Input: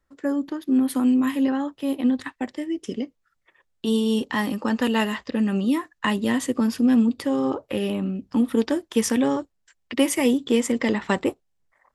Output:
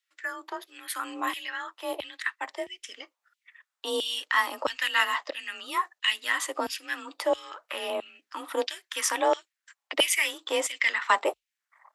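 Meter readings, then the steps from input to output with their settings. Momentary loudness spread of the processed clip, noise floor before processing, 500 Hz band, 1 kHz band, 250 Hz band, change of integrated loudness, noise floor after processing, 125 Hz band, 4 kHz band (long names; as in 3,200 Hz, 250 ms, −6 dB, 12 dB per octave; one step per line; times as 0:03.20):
14 LU, −72 dBFS, −5.0 dB, +2.0 dB, −23.0 dB, −5.5 dB, below −85 dBFS, below −30 dB, +4.0 dB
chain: auto-filter high-pass saw down 1.5 Hz 580–3,100 Hz
frequency shifter +36 Hz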